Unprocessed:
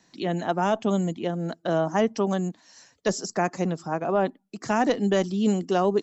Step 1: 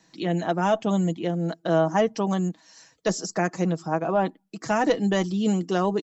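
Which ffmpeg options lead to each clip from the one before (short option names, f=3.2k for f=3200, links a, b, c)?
-af "aecho=1:1:6.2:0.46"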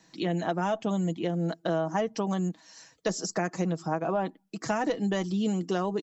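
-af "acompressor=threshold=-25dB:ratio=4"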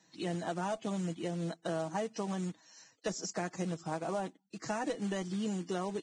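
-af "acrusher=bits=4:mode=log:mix=0:aa=0.000001,volume=-7.5dB" -ar 22050 -c:a libvorbis -b:a 16k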